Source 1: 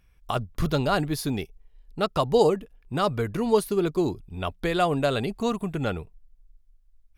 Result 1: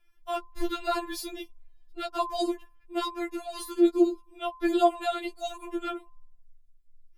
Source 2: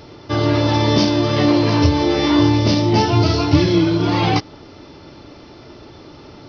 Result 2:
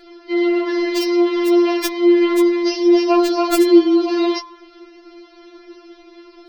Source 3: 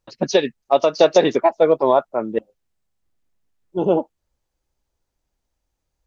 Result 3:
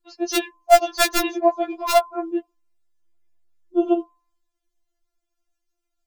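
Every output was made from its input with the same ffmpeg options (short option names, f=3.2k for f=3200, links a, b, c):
-af "aeval=exprs='(mod(1.58*val(0)+1,2)-1)/1.58':c=same,bandreject=f=103.2:t=h:w=4,bandreject=f=206.4:t=h:w=4,bandreject=f=309.6:t=h:w=4,bandreject=f=412.8:t=h:w=4,bandreject=f=516:t=h:w=4,bandreject=f=619.2:t=h:w=4,bandreject=f=722.4:t=h:w=4,bandreject=f=825.6:t=h:w=4,bandreject=f=928.8:t=h:w=4,bandreject=f=1.032k:t=h:w=4,afftfilt=real='re*4*eq(mod(b,16),0)':imag='im*4*eq(mod(b,16),0)':win_size=2048:overlap=0.75,volume=-1dB"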